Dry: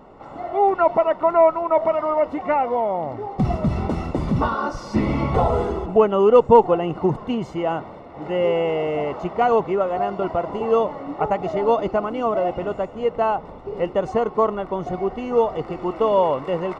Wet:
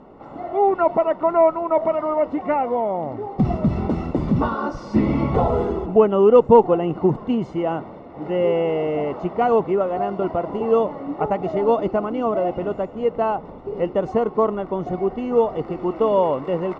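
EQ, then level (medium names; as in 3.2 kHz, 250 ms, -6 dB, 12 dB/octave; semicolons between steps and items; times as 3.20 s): distance through air 72 m; peaking EQ 260 Hz +6 dB 2 oct; -2.5 dB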